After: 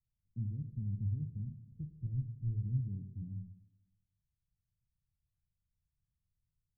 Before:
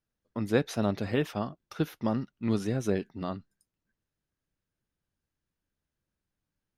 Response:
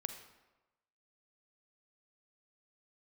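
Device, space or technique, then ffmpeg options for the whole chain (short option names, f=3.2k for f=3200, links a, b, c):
club heard from the street: -filter_complex "[0:a]asettb=1/sr,asplit=3[a][b][c];[a]atrim=end=1.634[d];[b]atrim=start=1.63:end=2.64,asetpts=PTS-STARTPTS,afade=t=in:d=0.004:c=qsin,afade=t=out:st=1.006:d=0.004:c=qsin,aecho=1:1:2.2:0.78,atrim=end_sample=44541[e];[c]atrim=start=2.636[f];[d][e]acrossfade=d=0.004:c1=hsin:c2=qsin[g];[g][f]acrossfade=d=0.004:c1=qsin:c2=hsin,alimiter=limit=-23.5dB:level=0:latency=1,lowpass=f=140:w=0.5412,lowpass=f=140:w=1.3066[h];[1:a]atrim=start_sample=2205[i];[h][i]afir=irnorm=-1:irlink=0,volume=5dB"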